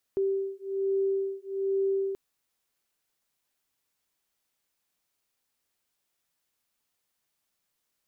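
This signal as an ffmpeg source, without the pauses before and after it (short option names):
-f lavfi -i "aevalsrc='0.0355*(sin(2*PI*389*t)+sin(2*PI*390.2*t))':d=1.98:s=44100"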